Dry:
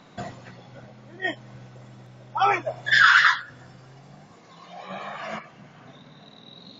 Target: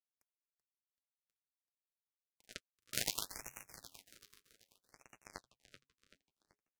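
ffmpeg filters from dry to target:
-filter_complex "[0:a]afftfilt=real='re*lt(hypot(re,im),0.1)':imag='im*lt(hypot(re,im),0.1)':win_size=1024:overlap=0.75,equalizer=f=3k:t=o:w=0.4:g=-12.5,areverse,acompressor=mode=upward:threshold=-46dB:ratio=2.5,areverse,acrusher=bits=3:mix=0:aa=0.5,flanger=delay=1.7:depth=9:regen=-39:speed=0.46:shape=triangular,asplit=2[a][b];[b]asplit=5[c][d][e][f][g];[c]adelay=383,afreqshift=-140,volume=-11dB[h];[d]adelay=766,afreqshift=-280,volume=-17.9dB[i];[e]adelay=1149,afreqshift=-420,volume=-24.9dB[j];[f]adelay=1532,afreqshift=-560,volume=-31.8dB[k];[g]adelay=1915,afreqshift=-700,volume=-38.7dB[l];[h][i][j][k][l]amix=inputs=5:normalize=0[m];[a][m]amix=inputs=2:normalize=0,afftfilt=real='re*(1-between(b*sr/1024,710*pow(4100/710,0.5+0.5*sin(2*PI*0.63*pts/sr))/1.41,710*pow(4100/710,0.5+0.5*sin(2*PI*0.63*pts/sr))*1.41))':imag='im*(1-between(b*sr/1024,710*pow(4100/710,0.5+0.5*sin(2*PI*0.63*pts/sr))/1.41,710*pow(4100/710,0.5+0.5*sin(2*PI*0.63*pts/sr))*1.41))':win_size=1024:overlap=0.75,volume=17dB"

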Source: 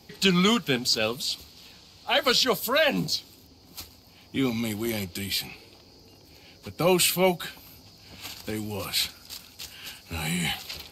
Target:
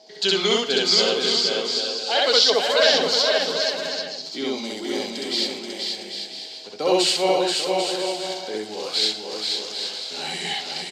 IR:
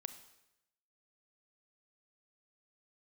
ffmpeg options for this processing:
-filter_complex "[0:a]aemphasis=mode=production:type=bsi,aeval=exprs='val(0)+0.00251*sin(2*PI*640*n/s)':c=same,highpass=270,equalizer=f=440:t=q:w=4:g=7,equalizer=f=730:t=q:w=4:g=3,equalizer=f=1.2k:t=q:w=4:g=-8,equalizer=f=2.5k:t=q:w=4:g=-10,lowpass=f=5.4k:w=0.5412,lowpass=f=5.4k:w=1.3066,aecho=1:1:480|792|994.8|1127|1212:0.631|0.398|0.251|0.158|0.1,asplit=2[a][b];[1:a]atrim=start_sample=2205,adelay=65[c];[b][c]afir=irnorm=-1:irlink=0,volume=4.5dB[d];[a][d]amix=inputs=2:normalize=0"

